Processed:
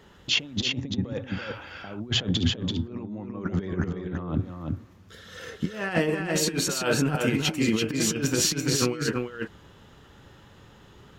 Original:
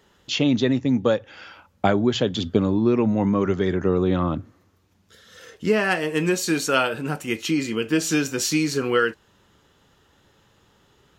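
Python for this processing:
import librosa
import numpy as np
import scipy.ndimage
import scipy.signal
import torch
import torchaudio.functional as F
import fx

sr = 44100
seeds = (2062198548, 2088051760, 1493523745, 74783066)

p1 = fx.bass_treble(x, sr, bass_db=4, treble_db=-5)
p2 = fx.over_compress(p1, sr, threshold_db=-26.0, ratio=-0.5)
p3 = p2 + fx.echo_single(p2, sr, ms=336, db=-4.0, dry=0)
y = p3 * librosa.db_to_amplitude(-1.5)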